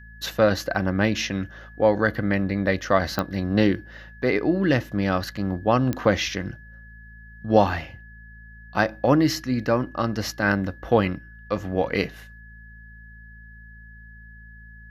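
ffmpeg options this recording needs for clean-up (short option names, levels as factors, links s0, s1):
-af "adeclick=t=4,bandreject=f=55.2:t=h:w=4,bandreject=f=110.4:t=h:w=4,bandreject=f=165.6:t=h:w=4,bandreject=f=220.8:t=h:w=4,bandreject=f=1700:w=30"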